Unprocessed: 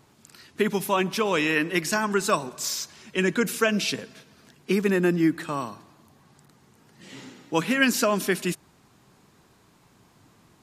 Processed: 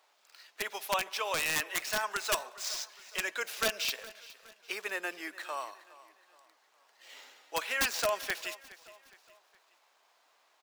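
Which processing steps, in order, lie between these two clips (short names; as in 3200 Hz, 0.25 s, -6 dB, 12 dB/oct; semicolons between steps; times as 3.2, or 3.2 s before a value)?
median filter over 5 samples; ladder high-pass 510 Hz, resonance 45%; tilt shelf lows -7 dB, about 1100 Hz; wrapped overs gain 20.5 dB; feedback echo 0.415 s, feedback 43%, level -19 dB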